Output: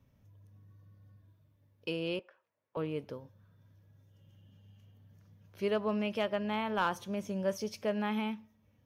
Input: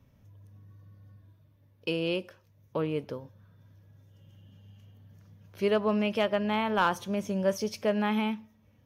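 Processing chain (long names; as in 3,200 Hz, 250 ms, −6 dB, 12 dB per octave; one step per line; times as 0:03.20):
0:02.19–0:02.77: band-pass filter 620–2,000 Hz
level −5.5 dB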